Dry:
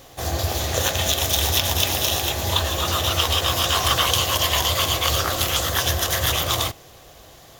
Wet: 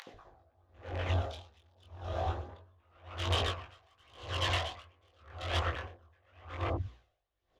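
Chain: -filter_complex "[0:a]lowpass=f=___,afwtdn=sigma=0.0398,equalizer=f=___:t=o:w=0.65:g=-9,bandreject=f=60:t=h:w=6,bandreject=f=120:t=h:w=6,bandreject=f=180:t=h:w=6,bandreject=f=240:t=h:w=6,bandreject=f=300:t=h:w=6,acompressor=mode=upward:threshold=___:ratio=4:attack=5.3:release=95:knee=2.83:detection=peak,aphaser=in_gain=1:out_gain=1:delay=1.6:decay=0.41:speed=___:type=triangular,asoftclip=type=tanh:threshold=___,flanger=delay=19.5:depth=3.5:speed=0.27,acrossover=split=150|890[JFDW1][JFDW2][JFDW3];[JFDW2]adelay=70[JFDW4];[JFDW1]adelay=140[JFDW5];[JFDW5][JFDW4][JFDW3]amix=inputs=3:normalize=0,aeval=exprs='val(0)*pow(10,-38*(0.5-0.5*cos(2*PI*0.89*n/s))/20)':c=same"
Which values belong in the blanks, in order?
2800, 180, 0.0126, 1.2, 0.112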